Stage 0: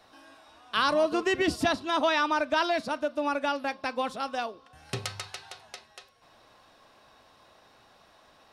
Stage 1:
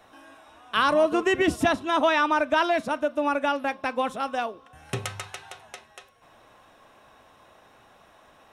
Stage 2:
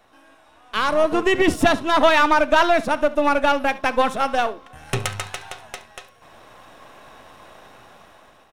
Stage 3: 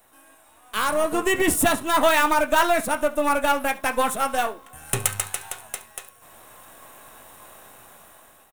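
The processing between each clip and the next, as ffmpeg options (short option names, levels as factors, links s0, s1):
-af "equalizer=f=4600:t=o:w=0.44:g=-14,volume=1.58"
-af "aeval=exprs='if(lt(val(0),0),0.447*val(0),val(0))':c=same,dynaudnorm=f=420:g=5:m=3.98,aecho=1:1:70:0.112"
-filter_complex "[0:a]highshelf=f=7600:g=6,acrossover=split=750|2700[s0][s1][s2];[s1]asplit=2[s3][s4];[s4]adelay=20,volume=0.75[s5];[s3][s5]amix=inputs=2:normalize=0[s6];[s2]aexciter=amount=3.6:drive=8.3:freq=7300[s7];[s0][s6][s7]amix=inputs=3:normalize=0,volume=0.631"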